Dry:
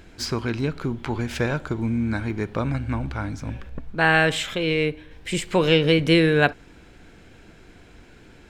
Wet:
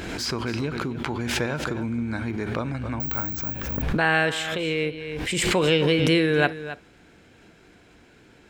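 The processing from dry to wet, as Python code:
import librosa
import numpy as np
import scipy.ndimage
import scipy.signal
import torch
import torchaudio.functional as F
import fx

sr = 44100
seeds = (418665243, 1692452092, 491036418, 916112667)

y = fx.resample_bad(x, sr, factor=2, down='none', up='zero_stuff', at=(3.0, 3.55))
y = fx.highpass(y, sr, hz=120.0, slope=6)
y = y + 10.0 ** (-13.5 / 20.0) * np.pad(y, (int(271 * sr / 1000.0), 0))[:len(y)]
y = fx.pre_swell(y, sr, db_per_s=27.0)
y = F.gain(torch.from_numpy(y), -3.0).numpy()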